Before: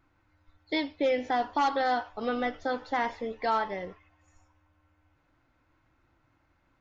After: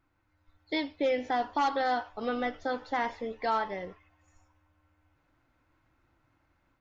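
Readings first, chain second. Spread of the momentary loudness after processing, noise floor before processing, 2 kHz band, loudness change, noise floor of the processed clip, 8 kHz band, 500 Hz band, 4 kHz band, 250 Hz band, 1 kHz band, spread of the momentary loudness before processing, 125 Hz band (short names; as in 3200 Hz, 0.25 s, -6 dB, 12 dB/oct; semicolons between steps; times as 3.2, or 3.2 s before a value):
7 LU, -70 dBFS, -1.5 dB, -1.5 dB, -74 dBFS, n/a, -1.5 dB, -1.5 dB, -1.5 dB, -1.5 dB, 7 LU, -1.5 dB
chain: AGC gain up to 4 dB; gain -5.5 dB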